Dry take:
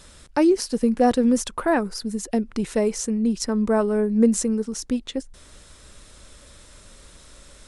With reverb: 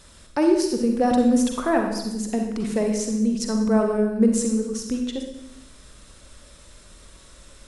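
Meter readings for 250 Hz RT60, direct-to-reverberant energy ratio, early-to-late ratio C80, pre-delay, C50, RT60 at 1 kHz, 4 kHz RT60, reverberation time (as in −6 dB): 1.1 s, 3.0 dB, 7.0 dB, 39 ms, 3.5 dB, 0.85 s, 0.75 s, 0.95 s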